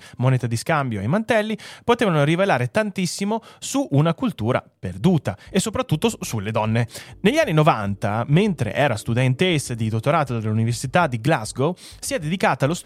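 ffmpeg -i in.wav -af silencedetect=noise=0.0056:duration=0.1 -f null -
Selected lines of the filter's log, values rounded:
silence_start: 4.68
silence_end: 4.83 | silence_duration: 0.15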